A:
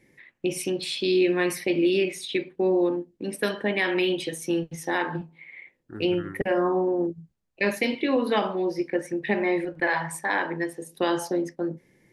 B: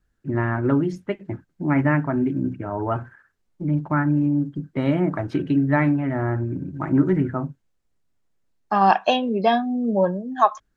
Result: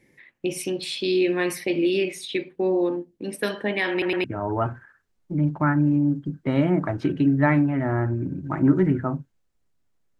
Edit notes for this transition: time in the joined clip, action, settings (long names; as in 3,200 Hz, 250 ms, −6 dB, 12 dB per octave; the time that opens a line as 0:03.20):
A
0:03.91: stutter in place 0.11 s, 3 plays
0:04.24: continue with B from 0:02.54